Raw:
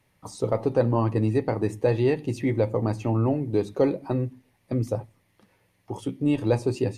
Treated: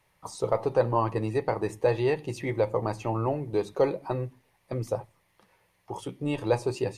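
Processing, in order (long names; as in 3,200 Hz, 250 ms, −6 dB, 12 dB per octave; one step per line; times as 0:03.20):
graphic EQ with 15 bands 100 Hz −8 dB, 250 Hz −12 dB, 1,000 Hz +4 dB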